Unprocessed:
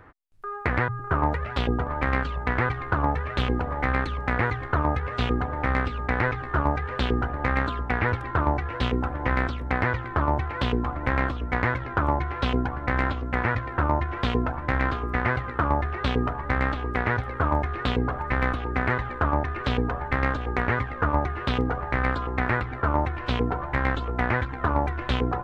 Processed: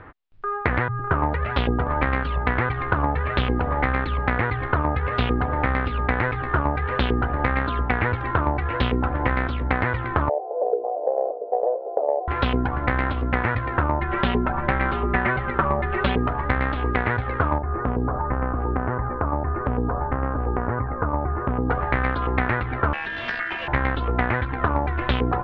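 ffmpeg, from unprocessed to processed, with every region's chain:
ffmpeg -i in.wav -filter_complex "[0:a]asettb=1/sr,asplit=3[link_01][link_02][link_03];[link_01]atrim=end=10.294[link_04];[link_02]atrim=start=10.29:end=12.28,asetpts=PTS-STARTPTS,afade=type=in:duration=0.004:curve=qsin,afade=type=out:start_time=1.986:duration=0.004:curve=qsin,asuperpass=centerf=560:order=8:qfactor=1.8,acontrast=80[link_05];[link_03]atrim=start=12.276[link_06];[link_04][link_05]acrossfade=duration=0.004:curve1=hsin:curve2=qsin[link_07];[link_07][link_06]acrossfade=duration=0.004:curve1=qsin:curve2=hsin,asettb=1/sr,asplit=3[link_08][link_09][link_10];[link_08]atrim=end=14.004[link_11];[link_09]atrim=start=14:end=16.17,asetpts=PTS-STARTPTS,afade=type=in:duration=0.004:curve=qsin,afade=type=out:start_time=2.166:duration=0.004:curve=qsin,lowpass=3800,aecho=1:1:5.2:0.82,atrim=end_sample=95697[link_12];[link_10]atrim=start=16.166[link_13];[link_11][link_12]acrossfade=duration=0.004:curve1=hsin:curve2=qsin[link_14];[link_14][link_13]acrossfade=duration=0.004:curve1=qsin:curve2=hsin,asettb=1/sr,asplit=3[link_15][link_16][link_17];[link_15]atrim=end=17.584[link_18];[link_16]atrim=start=17.58:end=21.7,asetpts=PTS-STARTPTS,afade=type=in:duration=0.004:curve=qsin,afade=type=out:start_time=4.116:duration=0.004:curve=qsin,lowpass=frequency=1300:width=0.5412,lowpass=frequency=1300:width=1.3066,acompressor=threshold=-26dB:ratio=2.5:attack=3.2:release=140:knee=1:detection=peak[link_19];[link_17]atrim=start=21.696[link_20];[link_18][link_19]acrossfade=duration=0.004:curve1=hsin:curve2=qsin[link_21];[link_21][link_20]acrossfade=duration=0.004:curve1=qsin:curve2=hsin,asettb=1/sr,asplit=3[link_22][link_23][link_24];[link_22]atrim=end=22.934[link_25];[link_23]atrim=start=22.93:end=23.68,asetpts=PTS-STARTPTS,afade=type=in:duration=0.004:curve=qsin,afade=type=out:start_time=0.746:duration=0.004:curve=qsin,aeval=exprs='val(0)+0.5*0.0282*sgn(val(0))':channel_layout=same,aeval=exprs='val(0)*sin(2*PI*1700*n/s)':channel_layout=same,acrossover=split=97|400|1300|4000[link_26][link_27][link_28][link_29][link_30];[link_26]acompressor=threshold=-53dB:ratio=3[link_31];[link_27]acompressor=threshold=-49dB:ratio=3[link_32];[link_28]acompressor=threshold=-42dB:ratio=3[link_33];[link_29]acompressor=threshold=-39dB:ratio=3[link_34];[link_30]acompressor=threshold=-51dB:ratio=3[link_35];[link_31][link_32][link_33][link_34][link_35]amix=inputs=5:normalize=0[link_36];[link_24]atrim=start=23.676[link_37];[link_25][link_36]acrossfade=duration=0.004:curve1=hsin:curve2=qsin[link_38];[link_38][link_37]acrossfade=duration=0.004:curve1=qsin:curve2=hsin,acompressor=threshold=-24dB:ratio=6,lowpass=frequency=3900:width=0.5412,lowpass=frequency=3900:width=1.3066,volume=7dB" out.wav

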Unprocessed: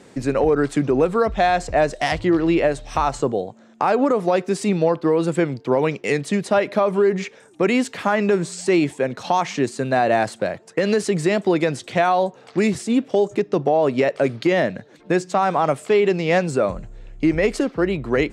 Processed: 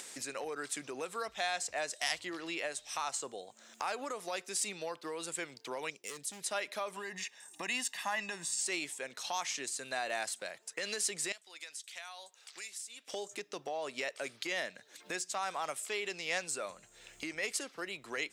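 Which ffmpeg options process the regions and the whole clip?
ffmpeg -i in.wav -filter_complex "[0:a]asettb=1/sr,asplit=3[link_01][link_02][link_03];[link_01]atrim=end=5.904[link_04];[link_02]atrim=start=5.9:end=6.41,asetpts=PTS-STARTPTS,afade=type=in:duration=0.004:curve=qsin,afade=type=out:start_time=0.506:duration=0.004:curve=qsin,equalizer=frequency=1900:width_type=o:width=2.9:gain=-11.5,asoftclip=type=hard:threshold=-20.5dB[link_05];[link_03]atrim=start=6.406[link_06];[link_04][link_05]acrossfade=duration=0.004:curve1=hsin:curve2=qsin[link_07];[link_07][link_06]acrossfade=duration=0.004:curve1=qsin:curve2=hsin,asettb=1/sr,asplit=3[link_08][link_09][link_10];[link_08]atrim=end=6.964[link_11];[link_09]atrim=start=6.96:end=8.61,asetpts=PTS-STARTPTS,afade=type=in:duration=0.004:curve=qsin,afade=type=out:start_time=1.646:duration=0.004:curve=qsin,equalizer=frequency=8100:width_type=o:width=2.4:gain=-3,aecho=1:1:1.1:0.68,atrim=end_sample=72765[link_12];[link_10]atrim=start=8.606[link_13];[link_11][link_12]acrossfade=duration=0.004:curve1=hsin:curve2=qsin[link_14];[link_14][link_13]acrossfade=duration=0.004:curve1=qsin:curve2=hsin,asettb=1/sr,asplit=3[link_15][link_16][link_17];[link_15]atrim=end=11.324[link_18];[link_16]atrim=start=11.32:end=13.08,asetpts=PTS-STARTPTS,afade=type=in:duration=0.004:curve=qsin,afade=type=out:start_time=1.756:duration=0.004:curve=qsin,lowpass=frequency=2100:poles=1,aderivative[link_19];[link_17]atrim=start=13.076[link_20];[link_18][link_19]acrossfade=duration=0.004:curve1=hsin:curve2=qsin[link_21];[link_21][link_20]acrossfade=duration=0.004:curve1=qsin:curve2=hsin,aderivative,bandreject=frequency=4400:width=29,acompressor=mode=upward:threshold=-38dB:ratio=2.5" out.wav

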